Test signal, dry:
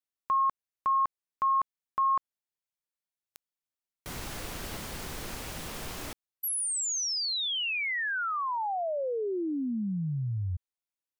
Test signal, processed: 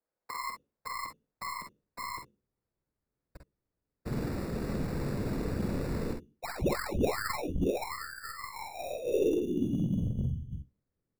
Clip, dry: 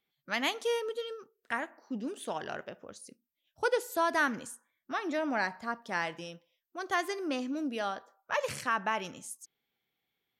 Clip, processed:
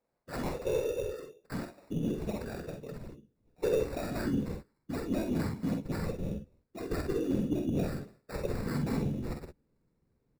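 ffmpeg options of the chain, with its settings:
-filter_complex "[0:a]bandreject=f=50:t=h:w=6,bandreject=f=100:t=h:w=6,bandreject=f=150:t=h:w=6,bandreject=f=200:t=h:w=6,bandreject=f=250:t=h:w=6,bandreject=f=300:t=h:w=6,bandreject=f=350:t=h:w=6,bandreject=f=400:t=h:w=6,bandreject=f=450:t=h:w=6,aecho=1:1:4.5:0.68,acrossover=split=410|2800[s0][s1][s2];[s1]acompressor=threshold=0.0112:ratio=3:attack=1.8:release=344:knee=2.83:detection=peak[s3];[s0][s3][s2]amix=inputs=3:normalize=0,highpass=f=140:w=0.5412,highpass=f=140:w=1.3066,afftfilt=real='hypot(re,im)*cos(2*PI*random(0))':imag='hypot(re,im)*sin(2*PI*random(1))':win_size=512:overlap=0.75,acrusher=samples=14:mix=1:aa=0.000001,aeval=exprs='0.0841*(cos(1*acos(clip(val(0)/0.0841,-1,1)))-cos(1*PI/2))+0.00335*(cos(2*acos(clip(val(0)/0.0841,-1,1)))-cos(2*PI/2))+0.00237*(cos(4*acos(clip(val(0)/0.0841,-1,1)))-cos(4*PI/2))':c=same,asoftclip=type=tanh:threshold=0.075,asubboost=boost=10.5:cutoff=210,areverse,acompressor=threshold=0.0447:ratio=10:attack=2:release=374:knee=1:detection=peak,areverse,equalizer=f=500:t=o:w=1.1:g=11,asplit=2[s4][s5];[s5]aecho=0:1:48|62:0.501|0.316[s6];[s4][s6]amix=inputs=2:normalize=0"

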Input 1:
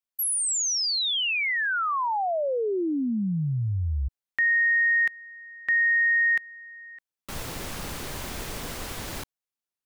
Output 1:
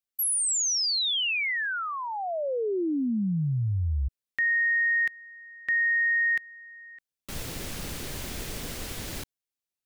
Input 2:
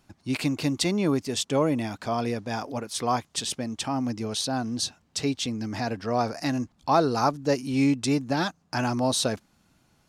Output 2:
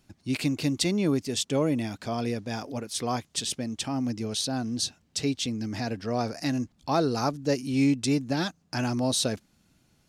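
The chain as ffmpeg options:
-af "equalizer=f=1000:t=o:w=1.4:g=-7"

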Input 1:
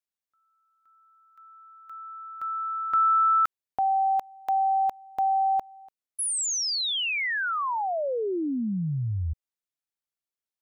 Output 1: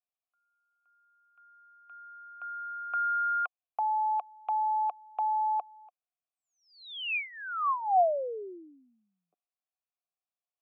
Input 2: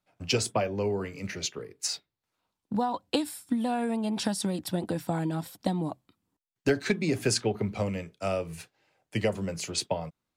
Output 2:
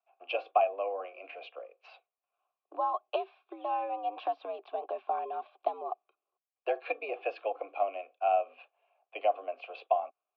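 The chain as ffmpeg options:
-filter_complex "[0:a]highpass=f=290:t=q:w=0.5412,highpass=f=290:t=q:w=1.307,lowpass=f=3400:t=q:w=0.5176,lowpass=f=3400:t=q:w=0.7071,lowpass=f=3400:t=q:w=1.932,afreqshift=89,asplit=3[s0][s1][s2];[s0]bandpass=f=730:t=q:w=8,volume=1[s3];[s1]bandpass=f=1090:t=q:w=8,volume=0.501[s4];[s2]bandpass=f=2440:t=q:w=8,volume=0.355[s5];[s3][s4][s5]amix=inputs=3:normalize=0,volume=2.37"

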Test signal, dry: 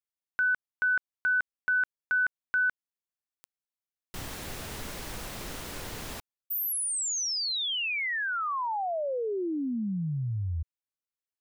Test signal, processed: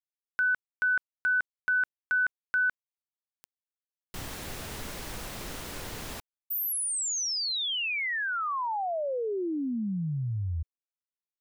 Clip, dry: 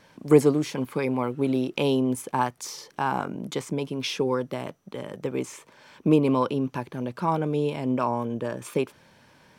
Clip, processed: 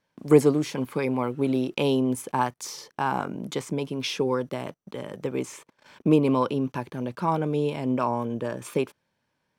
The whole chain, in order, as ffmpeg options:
-af "agate=range=0.1:threshold=0.00251:ratio=16:release=33:detection=rms"

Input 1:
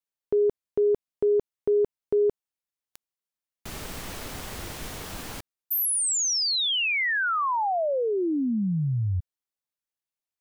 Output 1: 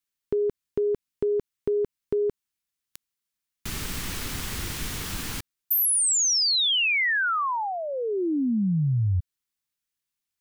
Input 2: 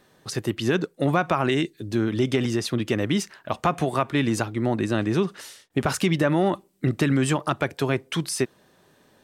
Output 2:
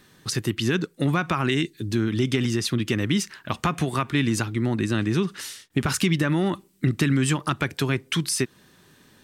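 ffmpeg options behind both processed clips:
-filter_complex "[0:a]equalizer=f=630:w=1.1:g=-12,asplit=2[s0][s1];[s1]acompressor=threshold=0.02:ratio=6:attack=26:release=294:detection=peak,volume=1.12[s2];[s0][s2]amix=inputs=2:normalize=0"

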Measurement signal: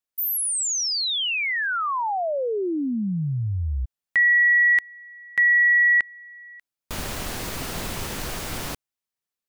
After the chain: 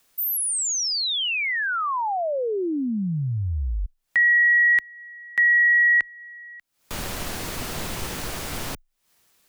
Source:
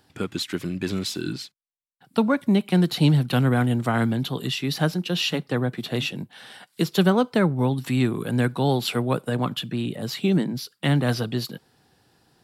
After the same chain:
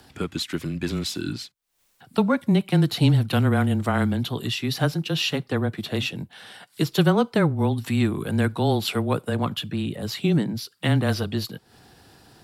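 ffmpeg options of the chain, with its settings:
-af "afreqshift=-17,acompressor=mode=upward:threshold=0.0141:ratio=2.5:attack=0.13:release=209:knee=2.83:detection=peak"

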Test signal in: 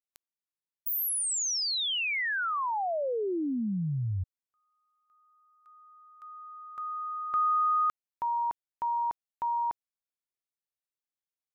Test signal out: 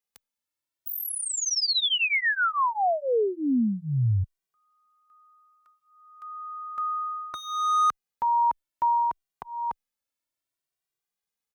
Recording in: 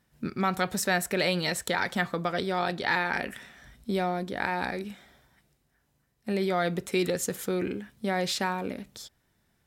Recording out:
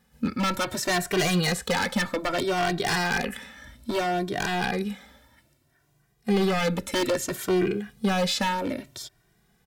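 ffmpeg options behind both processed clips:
-filter_complex "[0:a]acrossover=split=5500[s0][s1];[s1]acompressor=threshold=0.0126:ratio=4:attack=1:release=60[s2];[s0][s2]amix=inputs=2:normalize=0,aeval=exprs='0.0668*(abs(mod(val(0)/0.0668+3,4)-2)-1)':c=same,asplit=2[s3][s4];[s4]adelay=2,afreqshift=0.62[s5];[s3][s5]amix=inputs=2:normalize=1,volume=2.66"

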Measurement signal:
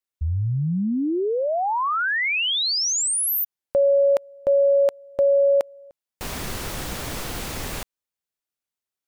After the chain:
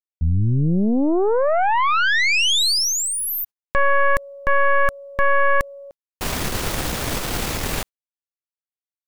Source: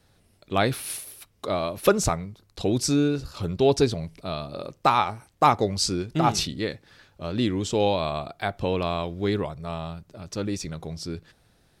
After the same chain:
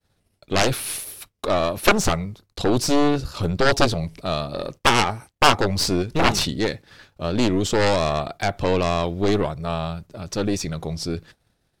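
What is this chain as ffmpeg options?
-filter_complex "[0:a]acrossover=split=4800[s0][s1];[s1]acompressor=threshold=0.0282:ratio=4:attack=1:release=60[s2];[s0][s2]amix=inputs=2:normalize=0,aeval=exprs='0.631*(cos(1*acos(clip(val(0)/0.631,-1,1)))-cos(1*PI/2))+0.112*(cos(6*acos(clip(val(0)/0.631,-1,1)))-cos(6*PI/2))+0.282*(cos(7*acos(clip(val(0)/0.631,-1,1)))-cos(7*PI/2))+0.2*(cos(8*acos(clip(val(0)/0.631,-1,1)))-cos(8*PI/2))':c=same,agate=range=0.0224:threshold=0.00447:ratio=3:release=87:detection=peak"

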